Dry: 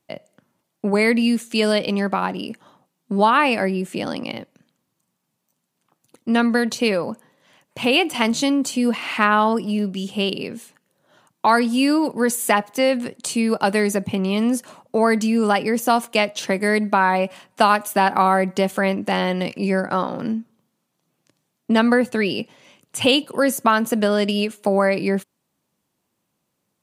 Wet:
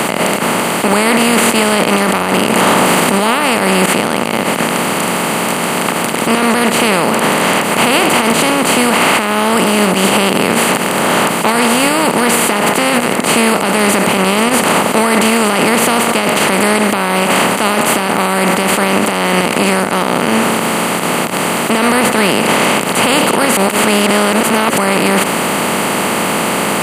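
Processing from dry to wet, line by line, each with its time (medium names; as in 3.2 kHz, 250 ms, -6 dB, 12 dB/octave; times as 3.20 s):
0.88–3.86 s: level flattener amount 100%
23.57–24.78 s: reverse
whole clip: spectral levelling over time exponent 0.2; peaking EQ 6.4 kHz -8.5 dB 0.31 oct; peak limiter -2.5 dBFS; trim +1 dB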